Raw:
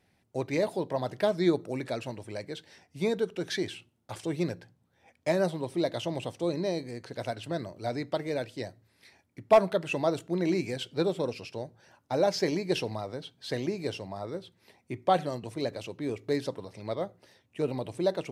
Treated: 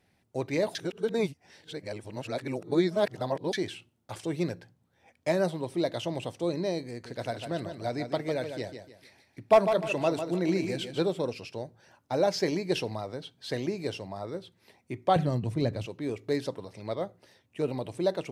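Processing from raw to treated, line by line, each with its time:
0:00.75–0:03.53: reverse
0:06.90–0:11.08: repeating echo 150 ms, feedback 33%, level −8 dB
0:15.16–0:15.86: bass and treble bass +13 dB, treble −3 dB

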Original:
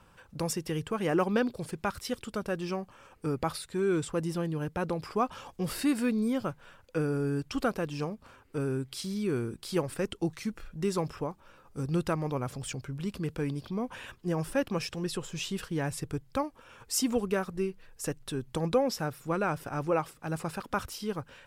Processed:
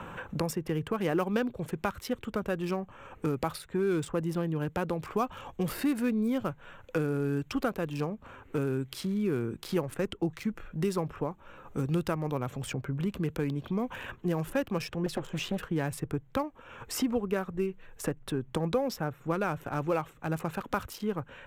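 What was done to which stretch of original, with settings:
0:15.06–0:15.58: highs frequency-modulated by the lows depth 0.84 ms
whole clip: adaptive Wiener filter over 9 samples; parametric band 14,000 Hz +11.5 dB 0.24 octaves; multiband upward and downward compressor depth 70%

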